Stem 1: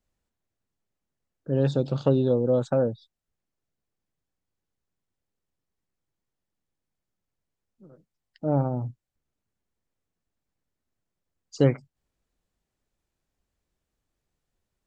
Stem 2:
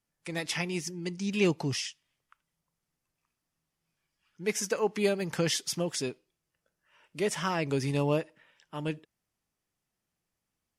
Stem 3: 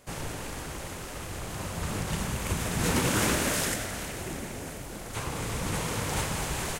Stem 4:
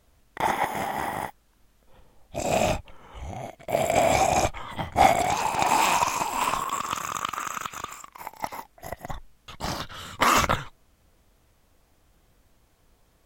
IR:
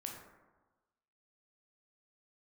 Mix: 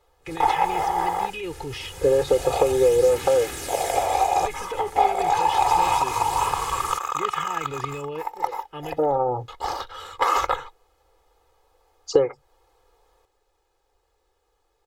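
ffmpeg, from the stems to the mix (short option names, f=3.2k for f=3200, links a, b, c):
-filter_complex "[0:a]acontrast=27,adelay=550,volume=0dB[a];[1:a]highshelf=f=4.2k:t=q:w=1.5:g=-11,acompressor=threshold=-28dB:ratio=6,volume=2dB[b];[2:a]adynamicequalizer=threshold=0.00631:dfrequency=1600:dqfactor=0.7:tfrequency=1600:tqfactor=0.7:attack=5:release=100:ratio=0.375:range=3.5:mode=boostabove:tftype=highshelf,adelay=200,volume=-9dB[c];[3:a]volume=-7.5dB[d];[b][c]amix=inputs=2:normalize=0,aphaser=in_gain=1:out_gain=1:delay=2.2:decay=0.32:speed=0.3:type=sinusoidal,alimiter=level_in=2dB:limit=-24dB:level=0:latency=1:release=14,volume=-2dB,volume=0dB[e];[a][d]amix=inputs=2:normalize=0,equalizer=f=125:t=o:w=1:g=-8,equalizer=f=250:t=o:w=1:g=-6,equalizer=f=500:t=o:w=1:g=11,equalizer=f=1k:t=o:w=1:g=11,equalizer=f=4k:t=o:w=1:g=4,acompressor=threshold=-18dB:ratio=10,volume=0dB[f];[e][f]amix=inputs=2:normalize=0,aecho=1:1:2.4:0.76"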